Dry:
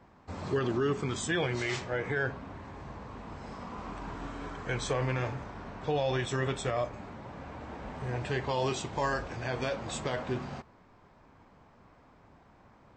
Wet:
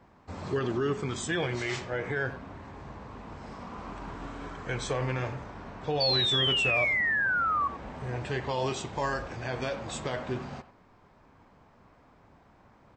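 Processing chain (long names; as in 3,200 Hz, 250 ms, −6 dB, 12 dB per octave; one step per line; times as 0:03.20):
0:06.00–0:07.68: sound drawn into the spectrogram fall 1,100–4,600 Hz −27 dBFS
far-end echo of a speakerphone 90 ms, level −14 dB
0:02.72–0:04.40: highs frequency-modulated by the lows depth 0.18 ms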